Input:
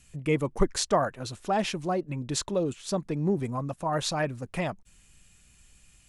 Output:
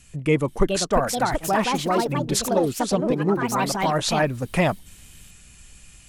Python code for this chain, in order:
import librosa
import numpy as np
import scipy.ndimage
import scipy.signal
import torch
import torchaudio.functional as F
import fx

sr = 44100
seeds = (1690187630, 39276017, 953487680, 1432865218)

y = fx.bandpass_edges(x, sr, low_hz=170.0, high_hz=5800.0, at=(3.12, 3.81))
y = fx.echo_pitch(y, sr, ms=480, semitones=4, count=2, db_per_echo=-3.0)
y = fx.rider(y, sr, range_db=10, speed_s=0.5)
y = y * 10.0 ** (5.0 / 20.0)